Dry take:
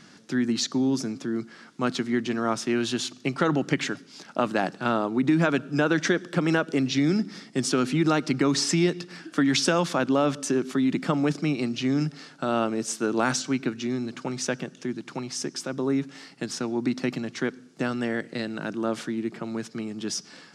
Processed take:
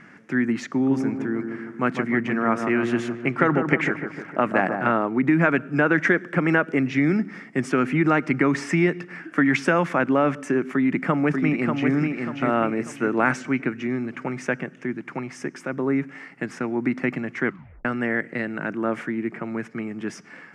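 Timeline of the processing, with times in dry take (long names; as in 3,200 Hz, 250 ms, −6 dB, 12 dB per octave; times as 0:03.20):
0:00.67–0:04.92: delay with a low-pass on its return 152 ms, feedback 55%, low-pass 1,400 Hz, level −6 dB
0:10.73–0:11.91: delay throw 590 ms, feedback 40%, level −4.5 dB
0:17.45: tape stop 0.40 s
whole clip: high shelf with overshoot 2,900 Hz −11.5 dB, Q 3; level +2 dB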